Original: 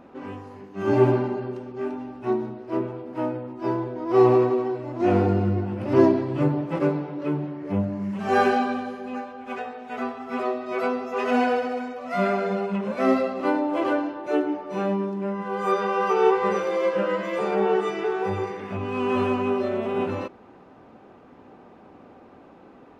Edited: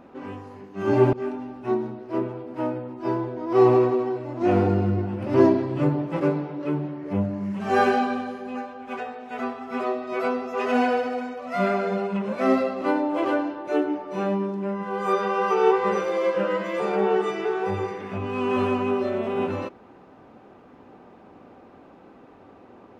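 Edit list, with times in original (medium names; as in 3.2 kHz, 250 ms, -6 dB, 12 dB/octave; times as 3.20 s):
1.13–1.72 s: delete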